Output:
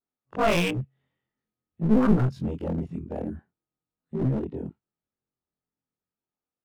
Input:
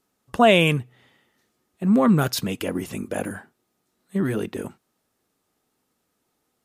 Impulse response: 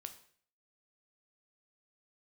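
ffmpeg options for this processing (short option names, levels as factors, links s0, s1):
-filter_complex "[0:a]afftfilt=real='re':imag='-im':win_size=2048:overlap=0.75,acrossover=split=200|980|4200[s0][s1][s2][s3];[s0]dynaudnorm=f=200:g=9:m=2.82[s4];[s4][s1][s2][s3]amix=inputs=4:normalize=0,afwtdn=0.0398,adynamicsmooth=sensitivity=4.5:basefreq=4200,aeval=exprs='clip(val(0),-1,0.0531)':c=same,adynamicequalizer=threshold=0.00398:dfrequency=6900:dqfactor=0.7:tfrequency=6900:tqfactor=0.7:attack=5:release=100:ratio=0.375:range=2.5:mode=boostabove:tftype=highshelf"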